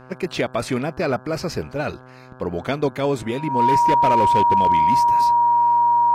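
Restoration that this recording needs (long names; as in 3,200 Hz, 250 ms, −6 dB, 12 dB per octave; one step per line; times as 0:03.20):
clipped peaks rebuilt −11 dBFS
hum removal 127.9 Hz, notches 13
notch filter 950 Hz, Q 30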